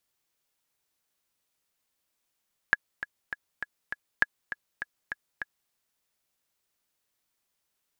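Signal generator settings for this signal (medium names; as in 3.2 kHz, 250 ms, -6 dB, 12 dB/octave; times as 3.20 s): metronome 201 bpm, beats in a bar 5, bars 2, 1.68 kHz, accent 12.5 dB -7 dBFS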